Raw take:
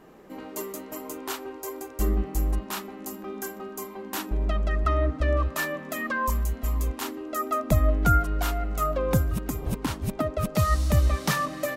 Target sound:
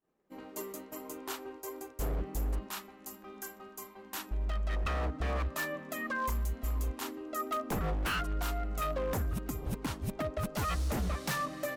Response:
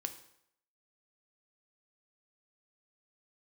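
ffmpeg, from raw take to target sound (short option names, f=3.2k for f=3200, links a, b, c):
-filter_complex "[0:a]agate=range=-33dB:threshold=-37dB:ratio=3:detection=peak,asettb=1/sr,asplit=3[a][b][c];[a]atrim=end=2.684[d];[b]atrim=start=2.68:end=4.7,asetpts=PTS-STARTPTS,afade=t=in:d=0.004:c=qsin,afade=t=out:st=2.016:d=0.004:c=qsin,equalizer=f=300:w=0.55:g=-7.5[e];[c]atrim=start=4.696[f];[d][e]acrossfade=d=0.004:c1=hsin:c2=qsin[g];[g][f]acrossfade=d=0.004:c1=qsin:c2=hsin,aeval=exprs='0.0944*(abs(mod(val(0)/0.0944+3,4)-2)-1)':c=same,volume=-6.5dB"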